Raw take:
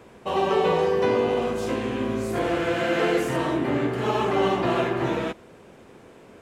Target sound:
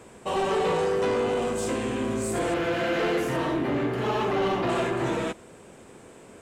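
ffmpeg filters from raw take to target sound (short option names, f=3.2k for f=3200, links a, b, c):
-af "asetnsamples=n=441:p=0,asendcmd='2.54 equalizer g -2.5;4.69 equalizer g 13',equalizer=f=8.1k:t=o:w=0.52:g=14,asoftclip=type=tanh:threshold=-19.5dB"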